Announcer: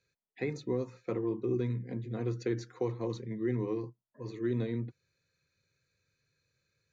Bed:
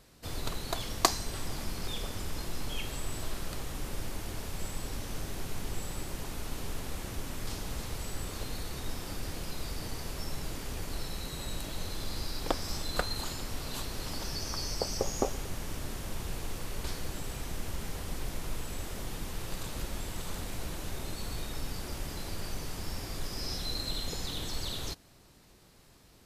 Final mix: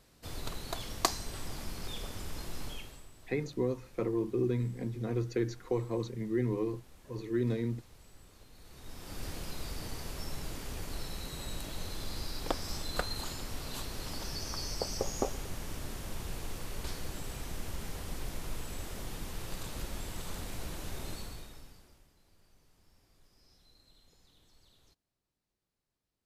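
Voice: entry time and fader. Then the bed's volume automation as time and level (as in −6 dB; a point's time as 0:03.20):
2.90 s, +1.0 dB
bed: 0:02.67 −4 dB
0:03.12 −19.5 dB
0:08.52 −19.5 dB
0:09.23 −2.5 dB
0:21.14 −2.5 dB
0:22.14 −29 dB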